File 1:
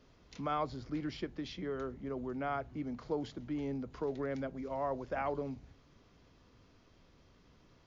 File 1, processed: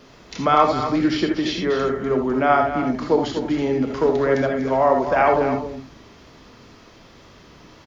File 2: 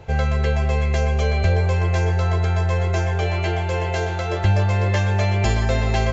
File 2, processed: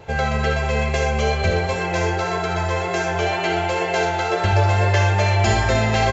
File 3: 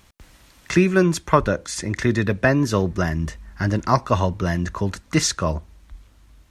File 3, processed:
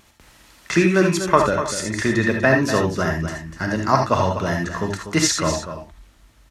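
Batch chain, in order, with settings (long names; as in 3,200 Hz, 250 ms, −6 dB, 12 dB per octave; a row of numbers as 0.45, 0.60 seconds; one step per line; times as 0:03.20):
low-shelf EQ 130 Hz −11.5 dB
tape wow and flutter 20 cents
on a send: single-tap delay 245 ms −10 dB
on the sum: reverb whose tail is shaped and stops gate 100 ms rising, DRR 2.5 dB
loudness normalisation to −20 LKFS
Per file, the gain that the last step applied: +18.0, +3.0, +1.0 decibels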